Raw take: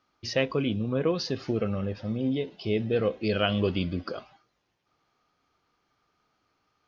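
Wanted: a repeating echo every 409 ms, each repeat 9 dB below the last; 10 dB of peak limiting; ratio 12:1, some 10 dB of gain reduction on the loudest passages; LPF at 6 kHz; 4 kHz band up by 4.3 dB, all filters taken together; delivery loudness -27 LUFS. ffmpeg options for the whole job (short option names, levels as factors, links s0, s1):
-af "lowpass=6000,equalizer=f=4000:t=o:g=7,acompressor=threshold=0.0316:ratio=12,alimiter=level_in=1.5:limit=0.0631:level=0:latency=1,volume=0.668,aecho=1:1:409|818|1227|1636:0.355|0.124|0.0435|0.0152,volume=3.35"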